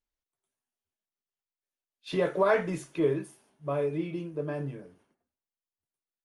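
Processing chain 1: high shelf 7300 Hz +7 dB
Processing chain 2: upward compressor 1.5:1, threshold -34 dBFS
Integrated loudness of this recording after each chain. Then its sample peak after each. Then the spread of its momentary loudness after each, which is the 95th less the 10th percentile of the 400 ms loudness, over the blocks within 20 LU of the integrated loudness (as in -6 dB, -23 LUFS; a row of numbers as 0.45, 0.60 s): -30.0, -30.0 LUFS; -13.5, -13.5 dBFS; 16, 16 LU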